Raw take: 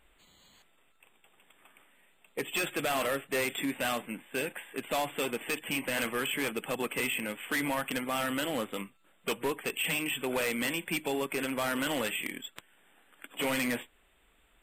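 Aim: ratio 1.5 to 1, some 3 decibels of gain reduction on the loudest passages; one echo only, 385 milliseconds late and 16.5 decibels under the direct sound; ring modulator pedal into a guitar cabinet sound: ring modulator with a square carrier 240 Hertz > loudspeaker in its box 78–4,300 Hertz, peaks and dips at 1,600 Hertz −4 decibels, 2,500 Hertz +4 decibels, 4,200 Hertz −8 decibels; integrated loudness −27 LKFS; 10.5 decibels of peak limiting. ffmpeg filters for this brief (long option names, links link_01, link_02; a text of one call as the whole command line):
ffmpeg -i in.wav -af "acompressor=threshold=-36dB:ratio=1.5,alimiter=level_in=11.5dB:limit=-24dB:level=0:latency=1,volume=-11.5dB,aecho=1:1:385:0.15,aeval=exprs='val(0)*sgn(sin(2*PI*240*n/s))':channel_layout=same,highpass=78,equalizer=frequency=1600:width_type=q:width=4:gain=-4,equalizer=frequency=2500:width_type=q:width=4:gain=4,equalizer=frequency=4200:width_type=q:width=4:gain=-8,lowpass=frequency=4300:width=0.5412,lowpass=frequency=4300:width=1.3066,volume=15.5dB" out.wav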